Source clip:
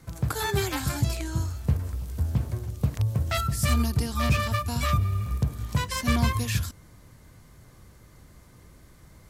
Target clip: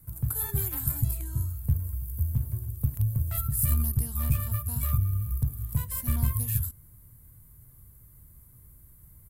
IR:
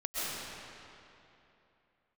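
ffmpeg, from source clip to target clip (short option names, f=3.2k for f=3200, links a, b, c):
-af "aeval=exprs='0.299*(cos(1*acos(clip(val(0)/0.299,-1,1)))-cos(1*PI/2))+0.075*(cos(2*acos(clip(val(0)/0.299,-1,1)))-cos(2*PI/2))':c=same,firequalizer=gain_entry='entry(120,0);entry(180,-8);entry(320,-12);entry(610,-16);entry(980,-13);entry(2200,-16);entry(6900,-16);entry(13000,-4)':delay=0.05:min_phase=1,aexciter=amount=6.8:drive=4.2:freq=7.9k,volume=-1dB"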